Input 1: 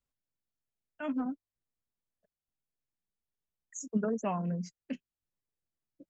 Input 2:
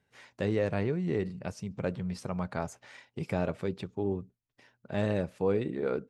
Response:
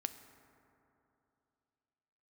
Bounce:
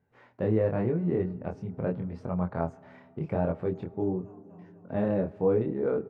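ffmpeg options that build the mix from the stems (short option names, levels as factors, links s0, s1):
-filter_complex "[0:a]acompressor=threshold=0.0158:ratio=3,volume=0.447,asplit=2[s0][s1];[s1]volume=0.316[s2];[1:a]volume=1.41,asplit=3[s3][s4][s5];[s4]volume=0.531[s6];[s5]apad=whole_len=268981[s7];[s0][s7]sidechaincompress=threshold=0.0282:ratio=8:attack=16:release=960[s8];[2:a]atrim=start_sample=2205[s9];[s6][s9]afir=irnorm=-1:irlink=0[s10];[s2]aecho=0:1:248|496|744|992|1240|1488:1|0.44|0.194|0.0852|0.0375|0.0165[s11];[s8][s3][s10][s11]amix=inputs=4:normalize=0,lowpass=1100,aemphasis=mode=production:type=50fm,flanger=delay=22.5:depth=4.9:speed=0.83"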